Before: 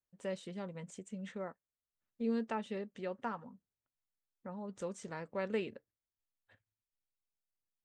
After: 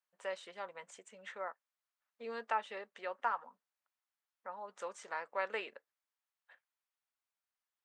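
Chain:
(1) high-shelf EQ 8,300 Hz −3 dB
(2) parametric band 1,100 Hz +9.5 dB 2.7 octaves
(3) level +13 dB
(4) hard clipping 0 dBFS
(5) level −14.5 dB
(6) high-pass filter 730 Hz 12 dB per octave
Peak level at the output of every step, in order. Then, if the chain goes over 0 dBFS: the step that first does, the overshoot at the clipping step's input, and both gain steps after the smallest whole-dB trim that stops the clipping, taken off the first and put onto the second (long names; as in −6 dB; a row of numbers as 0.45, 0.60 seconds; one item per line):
−24.5, −16.5, −3.5, −3.5, −18.0, −21.0 dBFS
no step passes full scale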